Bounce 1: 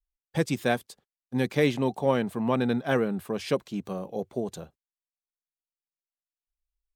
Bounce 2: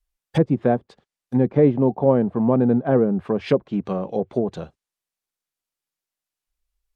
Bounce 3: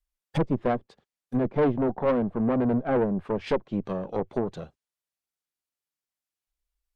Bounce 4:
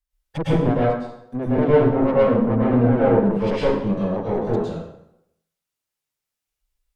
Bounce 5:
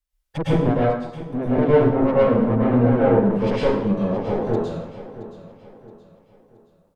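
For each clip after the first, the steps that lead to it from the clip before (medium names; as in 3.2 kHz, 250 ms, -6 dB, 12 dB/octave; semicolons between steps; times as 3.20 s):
low-pass that closes with the level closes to 690 Hz, closed at -24.5 dBFS; trim +8.5 dB
valve stage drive 17 dB, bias 0.8
plate-style reverb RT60 0.78 s, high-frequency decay 0.8×, pre-delay 95 ms, DRR -8 dB; trim -2 dB
feedback delay 672 ms, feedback 39%, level -14.5 dB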